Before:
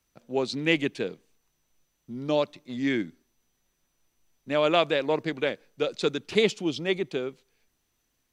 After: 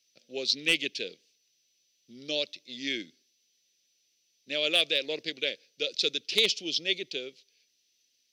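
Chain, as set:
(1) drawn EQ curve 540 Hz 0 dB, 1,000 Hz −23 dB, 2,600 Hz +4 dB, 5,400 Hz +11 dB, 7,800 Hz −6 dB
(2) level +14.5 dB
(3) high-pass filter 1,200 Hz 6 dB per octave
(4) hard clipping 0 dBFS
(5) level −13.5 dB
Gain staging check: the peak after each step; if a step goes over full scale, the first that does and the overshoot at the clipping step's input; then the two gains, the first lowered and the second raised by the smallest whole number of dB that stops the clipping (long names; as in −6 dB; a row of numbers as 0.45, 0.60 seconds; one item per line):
−6.0, +8.5, +7.0, 0.0, −13.5 dBFS
step 2, 7.0 dB
step 2 +7.5 dB, step 5 −6.5 dB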